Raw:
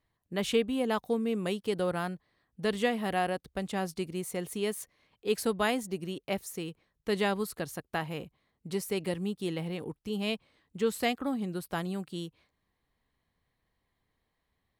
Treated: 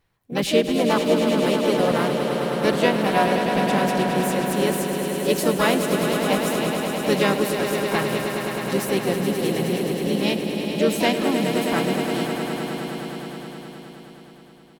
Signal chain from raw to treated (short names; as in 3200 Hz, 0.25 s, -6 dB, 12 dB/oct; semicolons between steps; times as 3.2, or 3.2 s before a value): harmoniser -4 st -8 dB, +5 st -5 dB; swelling echo 0.105 s, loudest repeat 5, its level -9 dB; gain +6.5 dB